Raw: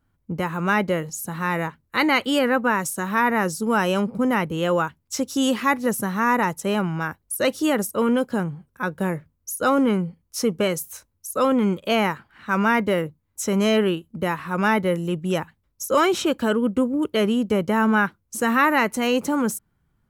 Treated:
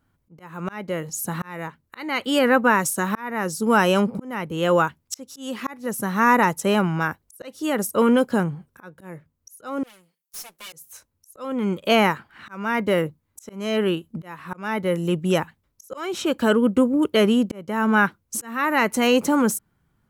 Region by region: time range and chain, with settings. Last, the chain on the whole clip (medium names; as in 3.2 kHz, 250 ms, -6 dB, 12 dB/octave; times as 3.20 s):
9.83–10.73 s: comb filter that takes the minimum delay 5.7 ms + differentiator + valve stage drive 35 dB, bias 0.6
whole clip: bass shelf 74 Hz -8 dB; slow attack 562 ms; trim +3.5 dB